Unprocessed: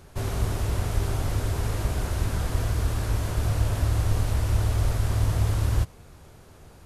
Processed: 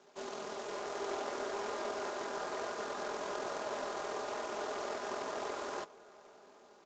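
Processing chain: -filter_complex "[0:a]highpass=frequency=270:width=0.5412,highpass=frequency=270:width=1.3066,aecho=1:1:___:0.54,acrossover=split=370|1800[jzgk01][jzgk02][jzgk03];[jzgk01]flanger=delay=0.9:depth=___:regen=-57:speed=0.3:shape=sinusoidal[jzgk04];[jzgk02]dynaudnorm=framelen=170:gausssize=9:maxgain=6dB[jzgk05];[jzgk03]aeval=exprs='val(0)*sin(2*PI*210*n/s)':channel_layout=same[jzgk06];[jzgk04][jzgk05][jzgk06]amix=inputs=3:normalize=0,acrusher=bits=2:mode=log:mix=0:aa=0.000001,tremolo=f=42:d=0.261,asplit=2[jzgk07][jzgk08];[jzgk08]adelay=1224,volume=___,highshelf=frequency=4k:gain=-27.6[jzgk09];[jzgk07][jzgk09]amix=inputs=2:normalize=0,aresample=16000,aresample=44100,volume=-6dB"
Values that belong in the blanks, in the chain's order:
4.9, 2.4, -23dB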